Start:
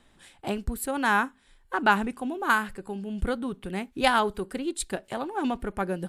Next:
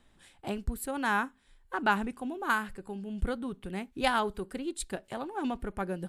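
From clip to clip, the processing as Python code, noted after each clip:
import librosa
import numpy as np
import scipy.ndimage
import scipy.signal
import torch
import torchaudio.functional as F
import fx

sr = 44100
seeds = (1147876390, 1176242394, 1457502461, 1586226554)

y = fx.low_shelf(x, sr, hz=130.0, db=4.5)
y = y * librosa.db_to_amplitude(-5.5)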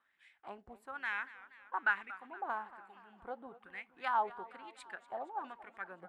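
y = fx.wah_lfo(x, sr, hz=1.1, low_hz=690.0, high_hz=2200.0, q=4.2)
y = fx.echo_warbled(y, sr, ms=236, feedback_pct=59, rate_hz=2.8, cents=130, wet_db=-17)
y = y * librosa.db_to_amplitude(2.0)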